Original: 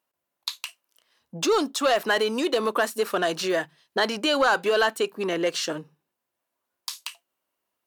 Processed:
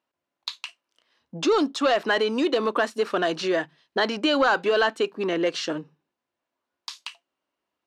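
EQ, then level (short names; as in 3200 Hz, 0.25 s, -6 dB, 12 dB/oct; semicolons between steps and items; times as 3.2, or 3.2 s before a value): LPF 5000 Hz 12 dB/oct; bell 290 Hz +4.5 dB 0.53 oct; 0.0 dB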